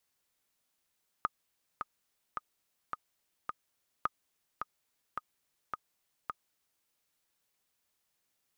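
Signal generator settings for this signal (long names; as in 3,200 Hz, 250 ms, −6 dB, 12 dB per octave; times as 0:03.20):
click track 107 BPM, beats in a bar 5, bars 2, 1,240 Hz, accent 6.5 dB −16 dBFS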